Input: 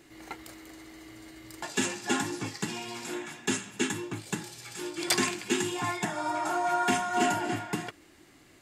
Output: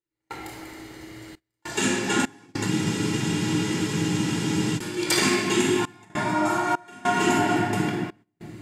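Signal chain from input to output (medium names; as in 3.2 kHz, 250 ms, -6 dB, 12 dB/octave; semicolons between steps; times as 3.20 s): simulated room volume 2700 m³, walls mixed, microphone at 4.5 m; trance gate "..xxxxxxx..xxxx" 100 bpm -24 dB; gate -46 dBFS, range -18 dB; spectral freeze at 2.71 s, 2.07 s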